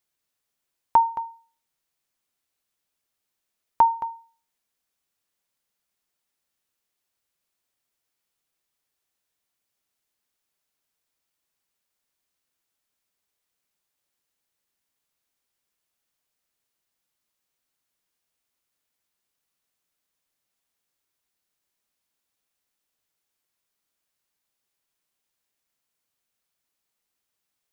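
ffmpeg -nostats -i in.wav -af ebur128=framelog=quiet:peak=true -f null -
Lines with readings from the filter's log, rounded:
Integrated loudness:
  I:         -23.3 LUFS
  Threshold: -35.2 LUFS
Loudness range:
  LRA:         0.2 LU
  Threshold: -50.8 LUFS
  LRA low:   -30.7 LUFS
  LRA high:  -30.5 LUFS
True peak:
  Peak:       -7.6 dBFS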